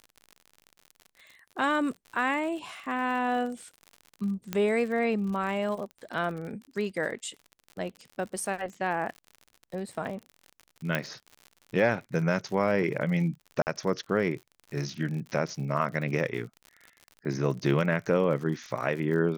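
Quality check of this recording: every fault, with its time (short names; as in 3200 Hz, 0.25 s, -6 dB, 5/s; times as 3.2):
crackle 67/s -37 dBFS
4.53 pop -15 dBFS
10.95 pop -14 dBFS
13.62–13.67 gap 49 ms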